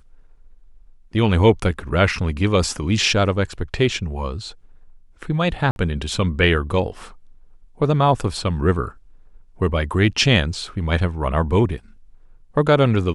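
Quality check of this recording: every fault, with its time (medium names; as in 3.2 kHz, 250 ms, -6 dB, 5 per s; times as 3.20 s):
5.71–5.76 s: dropout 51 ms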